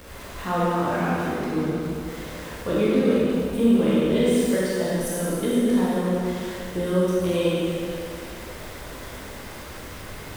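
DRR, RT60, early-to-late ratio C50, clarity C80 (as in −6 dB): −8.5 dB, 2.5 s, −4.5 dB, −2.5 dB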